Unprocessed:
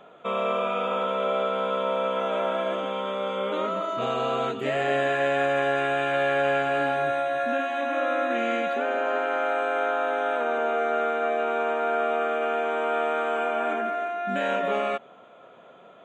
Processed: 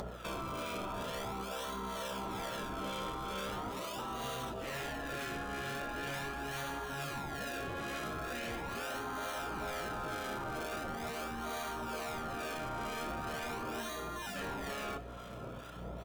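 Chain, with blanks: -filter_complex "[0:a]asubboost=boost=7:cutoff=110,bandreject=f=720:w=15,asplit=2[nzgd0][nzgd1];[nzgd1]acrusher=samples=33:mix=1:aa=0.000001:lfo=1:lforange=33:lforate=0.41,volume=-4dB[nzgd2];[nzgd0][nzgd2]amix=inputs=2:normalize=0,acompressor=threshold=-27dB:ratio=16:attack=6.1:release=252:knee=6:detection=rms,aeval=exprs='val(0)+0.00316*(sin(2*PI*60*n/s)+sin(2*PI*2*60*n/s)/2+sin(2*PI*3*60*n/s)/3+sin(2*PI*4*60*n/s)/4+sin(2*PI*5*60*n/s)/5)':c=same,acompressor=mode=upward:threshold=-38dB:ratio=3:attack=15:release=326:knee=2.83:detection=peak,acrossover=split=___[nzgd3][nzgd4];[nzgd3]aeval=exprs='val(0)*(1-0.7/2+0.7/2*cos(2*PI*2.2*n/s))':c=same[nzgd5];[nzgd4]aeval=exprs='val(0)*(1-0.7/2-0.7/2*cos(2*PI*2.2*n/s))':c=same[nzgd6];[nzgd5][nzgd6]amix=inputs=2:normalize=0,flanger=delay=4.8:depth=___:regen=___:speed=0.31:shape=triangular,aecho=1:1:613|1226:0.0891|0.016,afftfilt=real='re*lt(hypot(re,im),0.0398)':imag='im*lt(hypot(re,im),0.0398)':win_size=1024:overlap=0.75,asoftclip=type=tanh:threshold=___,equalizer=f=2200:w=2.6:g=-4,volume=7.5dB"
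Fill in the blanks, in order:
1100, 8.2, -66, -40dB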